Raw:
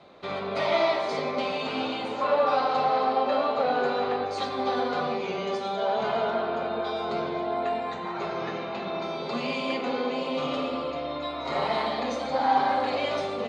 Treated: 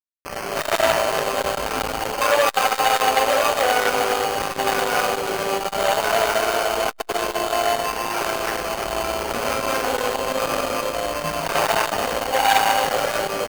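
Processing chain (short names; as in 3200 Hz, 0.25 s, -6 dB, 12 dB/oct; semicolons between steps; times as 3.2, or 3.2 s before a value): AGC gain up to 10 dB; HPF 470 Hz 12 dB/oct; bell 2700 Hz -7.5 dB 0.26 oct; echo 0.184 s -17 dB; sample-rate reducer 3700 Hz, jitter 0%; dynamic EQ 1500 Hz, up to +6 dB, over -38 dBFS, Q 6.1; bit-crush 5-bit; AM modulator 110 Hz, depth 40%; core saturation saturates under 2000 Hz; gain +3.5 dB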